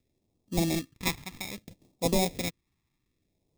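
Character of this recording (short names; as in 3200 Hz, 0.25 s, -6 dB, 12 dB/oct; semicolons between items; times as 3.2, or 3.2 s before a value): aliases and images of a low sample rate 1500 Hz, jitter 0%; phasing stages 2, 0.62 Hz, lowest notch 540–1500 Hz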